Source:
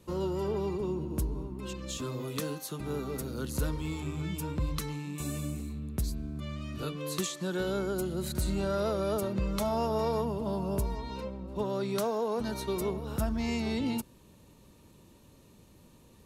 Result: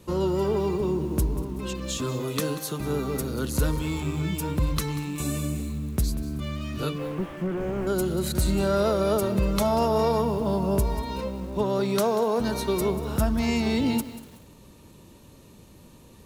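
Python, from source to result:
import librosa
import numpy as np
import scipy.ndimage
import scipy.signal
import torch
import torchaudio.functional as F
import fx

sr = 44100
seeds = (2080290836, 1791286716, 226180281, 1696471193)

y = fx.delta_mod(x, sr, bps=16000, step_db=-50.0, at=(6.98, 7.87))
y = y + 10.0 ** (-23.0 / 20.0) * np.pad(y, (int(241 * sr / 1000.0), 0))[:len(y)]
y = fx.echo_crushed(y, sr, ms=188, feedback_pct=35, bits=8, wet_db=-14)
y = y * librosa.db_to_amplitude(7.0)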